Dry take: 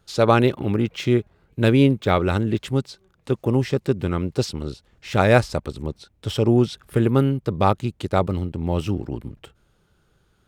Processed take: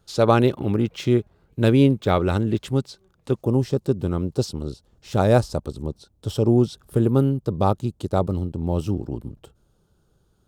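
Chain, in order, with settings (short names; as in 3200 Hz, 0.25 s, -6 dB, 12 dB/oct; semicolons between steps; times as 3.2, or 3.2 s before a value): bell 2100 Hz -5.5 dB 1.2 oct, from 3.41 s -14.5 dB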